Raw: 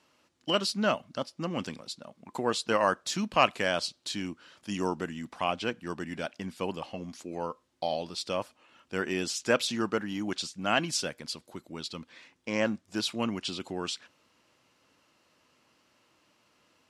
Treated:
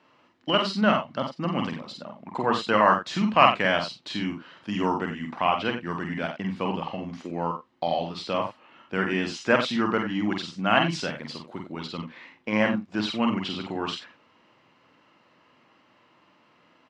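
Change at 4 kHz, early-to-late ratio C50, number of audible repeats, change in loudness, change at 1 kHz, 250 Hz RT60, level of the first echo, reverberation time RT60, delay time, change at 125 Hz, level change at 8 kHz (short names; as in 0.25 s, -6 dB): +2.5 dB, none, 2, +5.5 dB, +8.0 dB, none, -2.5 dB, none, 47 ms, +7.0 dB, -8.5 dB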